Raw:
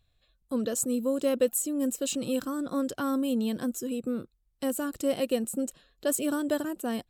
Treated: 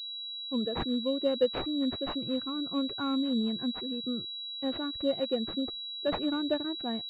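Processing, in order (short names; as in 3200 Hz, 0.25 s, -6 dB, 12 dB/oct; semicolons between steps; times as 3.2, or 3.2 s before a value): per-bin expansion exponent 1.5; pulse-width modulation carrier 3900 Hz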